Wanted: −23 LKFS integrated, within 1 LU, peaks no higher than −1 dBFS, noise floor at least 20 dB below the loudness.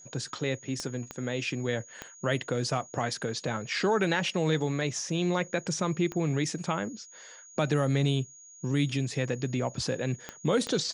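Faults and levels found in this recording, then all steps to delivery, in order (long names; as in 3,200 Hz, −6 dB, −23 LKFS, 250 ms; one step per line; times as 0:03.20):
number of clicks 6; interfering tone 6,700 Hz; level of the tone −49 dBFS; integrated loudness −30.0 LKFS; sample peak −12.0 dBFS; target loudness −23.0 LKFS
→ click removal
notch filter 6,700 Hz, Q 30
level +7 dB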